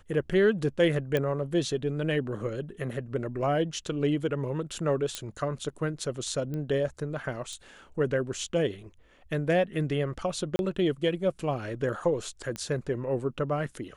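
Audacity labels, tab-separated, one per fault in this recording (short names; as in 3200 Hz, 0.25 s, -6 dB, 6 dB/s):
1.170000	1.170000	pop -15 dBFS
5.150000	5.150000	pop -15 dBFS
6.540000	6.540000	pop -24 dBFS
7.530000	7.530000	pop -29 dBFS
10.560000	10.590000	gap 31 ms
12.560000	12.560000	pop -20 dBFS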